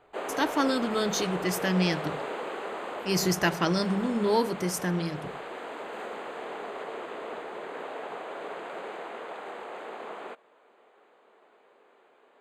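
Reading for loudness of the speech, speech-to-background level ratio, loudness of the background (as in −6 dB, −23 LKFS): −28.0 LKFS, 9.0 dB, −37.0 LKFS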